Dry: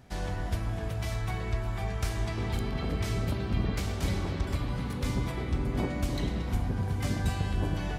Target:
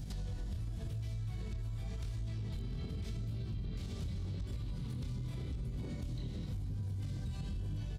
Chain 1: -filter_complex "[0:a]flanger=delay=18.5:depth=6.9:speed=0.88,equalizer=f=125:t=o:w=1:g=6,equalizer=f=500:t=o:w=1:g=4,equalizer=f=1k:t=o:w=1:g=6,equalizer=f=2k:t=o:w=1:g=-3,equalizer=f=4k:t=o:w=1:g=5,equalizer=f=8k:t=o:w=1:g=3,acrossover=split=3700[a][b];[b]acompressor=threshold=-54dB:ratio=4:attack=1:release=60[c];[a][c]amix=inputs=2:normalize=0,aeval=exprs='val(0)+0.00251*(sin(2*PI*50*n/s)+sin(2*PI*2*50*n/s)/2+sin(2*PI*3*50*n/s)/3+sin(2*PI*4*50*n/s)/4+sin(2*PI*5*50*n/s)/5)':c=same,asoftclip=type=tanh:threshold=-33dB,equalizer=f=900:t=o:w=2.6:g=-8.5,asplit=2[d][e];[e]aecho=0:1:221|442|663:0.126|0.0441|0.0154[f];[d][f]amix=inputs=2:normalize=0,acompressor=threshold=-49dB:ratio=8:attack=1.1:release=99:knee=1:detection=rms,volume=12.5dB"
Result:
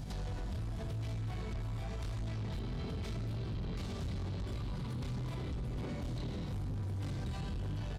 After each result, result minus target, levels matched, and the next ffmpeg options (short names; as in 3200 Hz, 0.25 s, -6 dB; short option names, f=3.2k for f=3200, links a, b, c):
1000 Hz band +9.0 dB; soft clip: distortion +12 dB
-filter_complex "[0:a]flanger=delay=18.5:depth=6.9:speed=0.88,equalizer=f=125:t=o:w=1:g=6,equalizer=f=500:t=o:w=1:g=4,equalizer=f=1k:t=o:w=1:g=6,equalizer=f=2k:t=o:w=1:g=-3,equalizer=f=4k:t=o:w=1:g=5,equalizer=f=8k:t=o:w=1:g=3,acrossover=split=3700[a][b];[b]acompressor=threshold=-54dB:ratio=4:attack=1:release=60[c];[a][c]amix=inputs=2:normalize=0,aeval=exprs='val(0)+0.00251*(sin(2*PI*50*n/s)+sin(2*PI*2*50*n/s)/2+sin(2*PI*3*50*n/s)/3+sin(2*PI*4*50*n/s)/4+sin(2*PI*5*50*n/s)/5)':c=same,asoftclip=type=tanh:threshold=-33dB,equalizer=f=900:t=o:w=2.6:g=-20,asplit=2[d][e];[e]aecho=0:1:221|442|663:0.126|0.0441|0.0154[f];[d][f]amix=inputs=2:normalize=0,acompressor=threshold=-49dB:ratio=8:attack=1.1:release=99:knee=1:detection=rms,volume=12.5dB"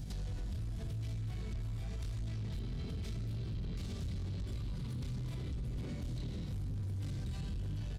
soft clip: distortion +12 dB
-filter_complex "[0:a]flanger=delay=18.5:depth=6.9:speed=0.88,equalizer=f=125:t=o:w=1:g=6,equalizer=f=500:t=o:w=1:g=4,equalizer=f=1k:t=o:w=1:g=6,equalizer=f=2k:t=o:w=1:g=-3,equalizer=f=4k:t=o:w=1:g=5,equalizer=f=8k:t=o:w=1:g=3,acrossover=split=3700[a][b];[b]acompressor=threshold=-54dB:ratio=4:attack=1:release=60[c];[a][c]amix=inputs=2:normalize=0,aeval=exprs='val(0)+0.00251*(sin(2*PI*50*n/s)+sin(2*PI*2*50*n/s)/2+sin(2*PI*3*50*n/s)/3+sin(2*PI*4*50*n/s)/4+sin(2*PI*5*50*n/s)/5)':c=same,asoftclip=type=tanh:threshold=-21.5dB,equalizer=f=900:t=o:w=2.6:g=-20,asplit=2[d][e];[e]aecho=0:1:221|442|663:0.126|0.0441|0.0154[f];[d][f]amix=inputs=2:normalize=0,acompressor=threshold=-49dB:ratio=8:attack=1.1:release=99:knee=1:detection=rms,volume=12.5dB"